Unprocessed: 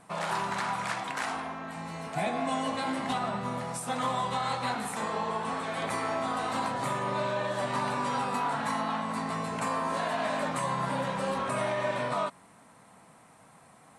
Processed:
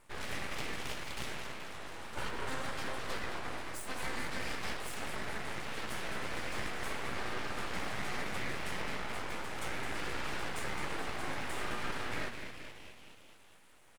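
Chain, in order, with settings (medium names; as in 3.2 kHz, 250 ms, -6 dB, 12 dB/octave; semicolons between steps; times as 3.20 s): frequency-shifting echo 214 ms, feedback 63%, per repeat +120 Hz, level -8 dB; full-wave rectifier; trim -5.5 dB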